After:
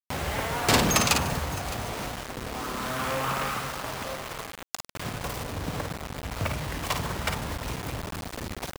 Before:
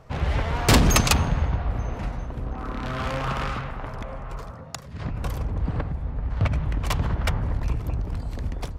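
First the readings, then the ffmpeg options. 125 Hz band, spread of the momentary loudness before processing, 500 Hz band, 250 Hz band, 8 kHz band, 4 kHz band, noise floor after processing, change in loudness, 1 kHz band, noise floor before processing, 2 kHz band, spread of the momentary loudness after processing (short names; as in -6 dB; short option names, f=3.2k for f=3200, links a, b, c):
-8.5 dB, 16 LU, -0.5 dB, -3.5 dB, +0.5 dB, +0.5 dB, -44 dBFS, -3.0 dB, +0.5 dB, -39 dBFS, +0.5 dB, 14 LU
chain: -af "highpass=f=280:p=1,aecho=1:1:42|53|148|613:0.168|0.473|0.106|0.106,asoftclip=type=tanh:threshold=-12.5dB,acrusher=bits=5:mix=0:aa=0.000001,acompressor=mode=upward:threshold=-29dB:ratio=2.5"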